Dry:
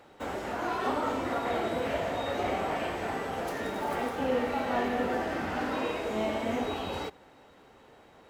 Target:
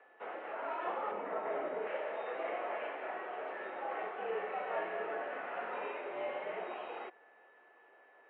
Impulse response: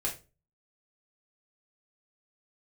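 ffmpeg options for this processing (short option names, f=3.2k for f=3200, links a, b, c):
-filter_complex "[0:a]asettb=1/sr,asplit=3[a][b][c];[a]atrim=end=1.114[d];[b]atrim=start=1.11:end=1.87,asetpts=PTS-STARTPTS,afade=t=in:d=0.004:c=qsin,afade=t=out:st=0.756:d=0.004:c=qsin,aemphasis=mode=reproduction:type=riaa[e];[c]atrim=start=1.866[f];[d][e]acrossfade=d=0.004:c1=hsin:c2=qsin[g];[g][f]acrossfade=d=0.004:c1=qsin:c2=hsin,aeval=exprs='val(0)+0.00126*sin(2*PI*1800*n/s)':c=same,highpass=f=500:t=q:w=0.5412,highpass=f=500:t=q:w=1.307,lowpass=f=2.8k:t=q:w=0.5176,lowpass=f=2.8k:t=q:w=0.7071,lowpass=f=2.8k:t=q:w=1.932,afreqshift=-62,volume=-6dB"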